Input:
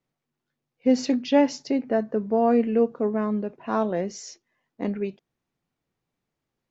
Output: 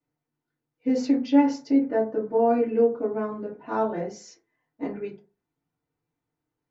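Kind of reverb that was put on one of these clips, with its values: FDN reverb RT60 0.35 s, low-frequency decay 1×, high-frequency decay 0.35×, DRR -7 dB; gain -10.5 dB

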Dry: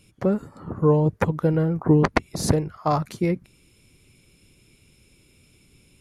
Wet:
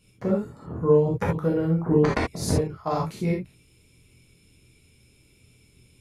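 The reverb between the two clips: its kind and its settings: non-linear reverb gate 0.1 s flat, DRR -4 dB; gain -8 dB

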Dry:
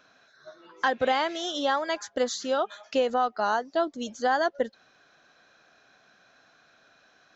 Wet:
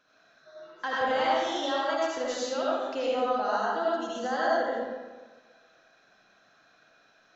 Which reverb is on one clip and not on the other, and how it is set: digital reverb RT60 1.4 s, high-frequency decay 0.65×, pre-delay 40 ms, DRR -7 dB; gain -9 dB

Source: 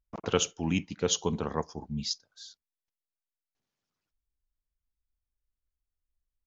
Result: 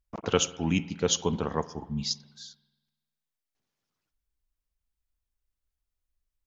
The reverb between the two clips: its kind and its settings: spring tank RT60 1.2 s, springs 48 ms, chirp 65 ms, DRR 16 dB; gain +2 dB

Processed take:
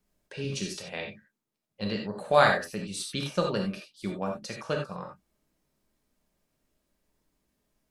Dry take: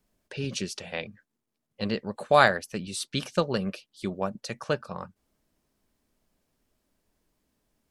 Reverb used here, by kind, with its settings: non-linear reverb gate 0.11 s flat, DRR 0.5 dB; gain -4 dB

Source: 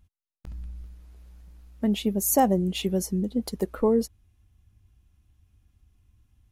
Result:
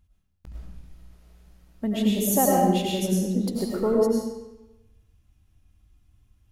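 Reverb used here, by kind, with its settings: digital reverb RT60 1 s, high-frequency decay 0.9×, pre-delay 65 ms, DRR -4 dB; gain -3 dB

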